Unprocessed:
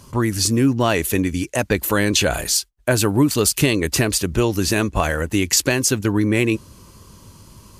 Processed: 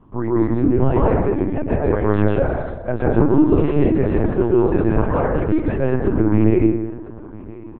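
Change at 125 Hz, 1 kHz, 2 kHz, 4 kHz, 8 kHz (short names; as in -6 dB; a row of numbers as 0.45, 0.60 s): +2.0 dB, +1.0 dB, -9.0 dB, under -25 dB, under -40 dB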